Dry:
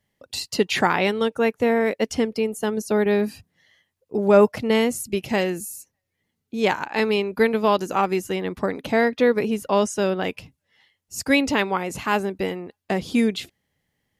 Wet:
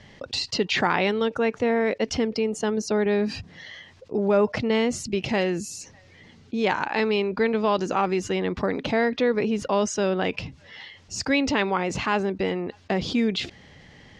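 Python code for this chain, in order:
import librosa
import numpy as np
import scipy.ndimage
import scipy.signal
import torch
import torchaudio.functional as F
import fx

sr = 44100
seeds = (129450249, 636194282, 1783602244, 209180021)

y = scipy.signal.sosfilt(scipy.signal.butter(4, 5800.0, 'lowpass', fs=sr, output='sos'), x)
y = fx.env_flatten(y, sr, amount_pct=50)
y = y * 10.0 ** (-6.5 / 20.0)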